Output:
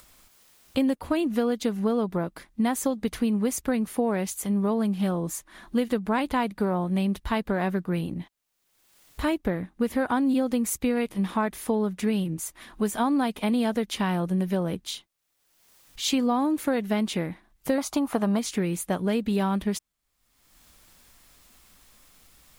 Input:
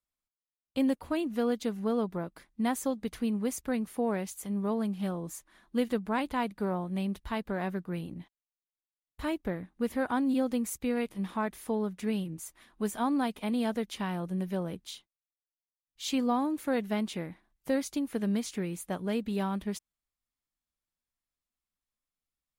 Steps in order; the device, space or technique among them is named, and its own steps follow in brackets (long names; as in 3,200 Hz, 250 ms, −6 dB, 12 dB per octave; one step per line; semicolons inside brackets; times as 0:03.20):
0:17.78–0:18.39: flat-topped bell 920 Hz +12.5 dB 1.3 octaves
upward and downward compression (upward compression, threshold −43 dBFS; downward compressor 4 to 1, threshold −30 dBFS, peak gain reduction 7 dB)
level +9 dB